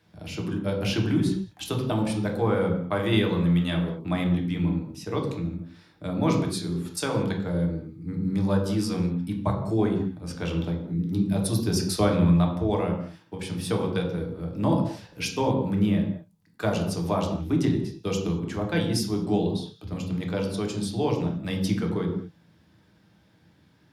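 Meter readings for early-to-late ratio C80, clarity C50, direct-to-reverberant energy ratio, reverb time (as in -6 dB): 8.5 dB, 6.0 dB, 1.0 dB, not exponential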